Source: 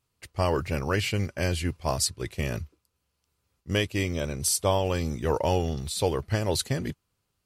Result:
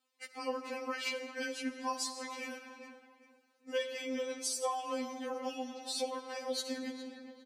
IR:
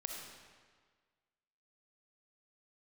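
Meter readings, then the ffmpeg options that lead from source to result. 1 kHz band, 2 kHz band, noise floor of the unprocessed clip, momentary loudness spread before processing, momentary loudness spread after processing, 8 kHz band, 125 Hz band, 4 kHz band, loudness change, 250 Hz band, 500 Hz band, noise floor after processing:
−7.0 dB, −7.5 dB, −78 dBFS, 7 LU, 12 LU, −10.0 dB, below −40 dB, −8.0 dB, −10.5 dB, −9.5 dB, −10.0 dB, −72 dBFS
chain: -filter_complex "[0:a]asplit=2[link_01][link_02];[link_02]adelay=406,lowpass=frequency=2400:poles=1,volume=-17dB,asplit=2[link_03][link_04];[link_04]adelay=406,lowpass=frequency=2400:poles=1,volume=0.34,asplit=2[link_05][link_06];[link_06]adelay=406,lowpass=frequency=2400:poles=1,volume=0.34[link_07];[link_01][link_03][link_05][link_07]amix=inputs=4:normalize=0,asplit=2[link_08][link_09];[1:a]atrim=start_sample=2205[link_10];[link_09][link_10]afir=irnorm=-1:irlink=0,volume=-2dB[link_11];[link_08][link_11]amix=inputs=2:normalize=0,acompressor=threshold=-29dB:ratio=3,highpass=300,equalizer=frequency=12000:width=1.2:gain=-10,afftfilt=real='re*3.46*eq(mod(b,12),0)':imag='im*3.46*eq(mod(b,12),0)':win_size=2048:overlap=0.75,volume=-1.5dB"

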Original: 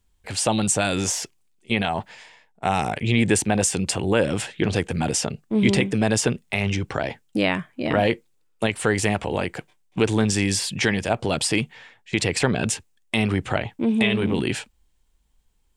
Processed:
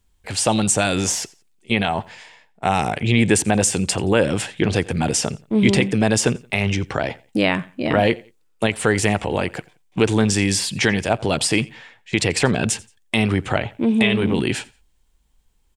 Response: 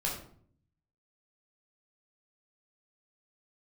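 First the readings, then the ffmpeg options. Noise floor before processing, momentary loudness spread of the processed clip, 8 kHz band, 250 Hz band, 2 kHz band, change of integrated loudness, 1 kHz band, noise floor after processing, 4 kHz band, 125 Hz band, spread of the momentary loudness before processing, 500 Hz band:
−64 dBFS, 8 LU, +3.0 dB, +3.0 dB, +3.0 dB, +3.0 dB, +3.0 dB, −60 dBFS, +3.0 dB, +3.0 dB, 8 LU, +3.0 dB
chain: -af "aecho=1:1:87|174:0.0708|0.0212,volume=3dB"

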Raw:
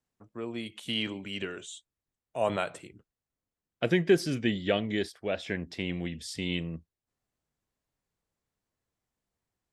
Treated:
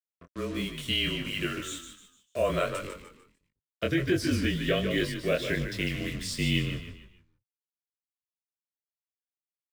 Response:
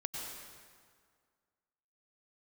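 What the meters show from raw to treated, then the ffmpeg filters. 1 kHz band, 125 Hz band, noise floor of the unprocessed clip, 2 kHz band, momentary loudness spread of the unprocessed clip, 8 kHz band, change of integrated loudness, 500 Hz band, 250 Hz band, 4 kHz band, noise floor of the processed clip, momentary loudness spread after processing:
0.0 dB, +4.5 dB, below −85 dBFS, +4.0 dB, 16 LU, +5.0 dB, +2.0 dB, 0.0 dB, +1.0 dB, +4.5 dB, below −85 dBFS, 12 LU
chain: -filter_complex "[0:a]equalizer=frequency=300:width_type=o:width=1.2:gain=-2,afreqshift=-31,adynamicequalizer=threshold=0.00562:dfrequency=130:dqfactor=2.4:tfrequency=130:tqfactor=2.4:attack=5:release=100:ratio=0.375:range=2:mode=cutabove:tftype=bell,acontrast=37,acrusher=bits=6:mix=0:aa=0.5,asuperstop=centerf=840:order=4:qfactor=2.9,asplit=5[link_01][link_02][link_03][link_04][link_05];[link_02]adelay=149,afreqshift=-38,volume=-8.5dB[link_06];[link_03]adelay=298,afreqshift=-76,volume=-17.1dB[link_07];[link_04]adelay=447,afreqshift=-114,volume=-25.8dB[link_08];[link_05]adelay=596,afreqshift=-152,volume=-34.4dB[link_09];[link_01][link_06][link_07][link_08][link_09]amix=inputs=5:normalize=0,alimiter=limit=-15dB:level=0:latency=1:release=263,flanger=delay=20:depth=4.5:speed=1.4,volume=2.5dB"

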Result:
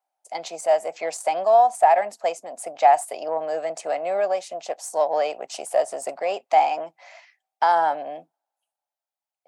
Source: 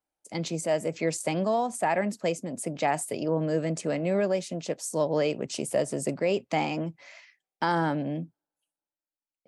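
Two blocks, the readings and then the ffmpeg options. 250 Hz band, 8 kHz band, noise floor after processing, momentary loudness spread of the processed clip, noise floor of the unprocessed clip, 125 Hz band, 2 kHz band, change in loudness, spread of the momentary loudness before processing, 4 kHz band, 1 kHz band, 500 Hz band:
−14.5 dB, 0.0 dB, below −85 dBFS, 15 LU, below −85 dBFS, below −20 dB, +1.5 dB, +6.5 dB, 7 LU, 0.0 dB, +11.5 dB, +5.0 dB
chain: -af "aeval=exprs='0.237*(cos(1*acos(clip(val(0)/0.237,-1,1)))-cos(1*PI/2))+0.00596*(cos(6*acos(clip(val(0)/0.237,-1,1)))-cos(6*PI/2))':channel_layout=same,highpass=frequency=730:width_type=q:width=5.2"

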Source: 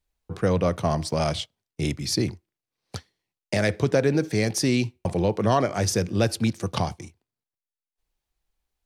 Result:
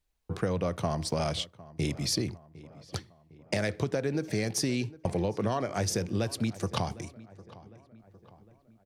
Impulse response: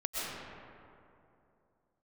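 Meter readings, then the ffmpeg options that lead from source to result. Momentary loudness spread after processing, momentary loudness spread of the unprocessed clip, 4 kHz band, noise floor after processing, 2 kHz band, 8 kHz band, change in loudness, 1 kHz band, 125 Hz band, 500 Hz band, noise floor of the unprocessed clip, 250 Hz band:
14 LU, 13 LU, −4.0 dB, −65 dBFS, −7.0 dB, −4.0 dB, −7.0 dB, −7.0 dB, −6.5 dB, −7.5 dB, below −85 dBFS, −6.5 dB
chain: -filter_complex "[0:a]acompressor=threshold=-26dB:ratio=6,asplit=2[link_01][link_02];[link_02]adelay=756,lowpass=frequency=2300:poles=1,volume=-19dB,asplit=2[link_03][link_04];[link_04]adelay=756,lowpass=frequency=2300:poles=1,volume=0.53,asplit=2[link_05][link_06];[link_06]adelay=756,lowpass=frequency=2300:poles=1,volume=0.53,asplit=2[link_07][link_08];[link_08]adelay=756,lowpass=frequency=2300:poles=1,volume=0.53[link_09];[link_03][link_05][link_07][link_09]amix=inputs=4:normalize=0[link_10];[link_01][link_10]amix=inputs=2:normalize=0"

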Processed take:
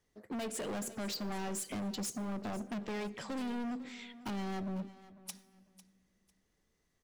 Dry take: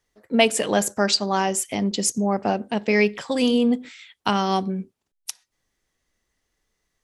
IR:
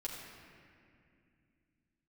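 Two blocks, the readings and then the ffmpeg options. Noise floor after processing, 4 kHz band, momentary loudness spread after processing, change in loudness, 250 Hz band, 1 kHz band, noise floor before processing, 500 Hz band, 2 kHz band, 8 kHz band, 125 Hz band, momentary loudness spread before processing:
−78 dBFS, −19.5 dB, 10 LU, −17.5 dB, −15.0 dB, −19.0 dB, −77 dBFS, −19.5 dB, −19.5 dB, −16.0 dB, −13.0 dB, 11 LU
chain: -filter_complex "[0:a]equalizer=frequency=180:width=0.36:gain=8,acompressor=threshold=-22dB:ratio=6,volume=30.5dB,asoftclip=hard,volume=-30.5dB,aecho=1:1:499|998:0.141|0.0325,asplit=2[link_01][link_02];[1:a]atrim=start_sample=2205,highshelf=frequency=8100:gain=10[link_03];[link_02][link_03]afir=irnorm=-1:irlink=0,volume=-17.5dB[link_04];[link_01][link_04]amix=inputs=2:normalize=0,volume=-6.5dB"

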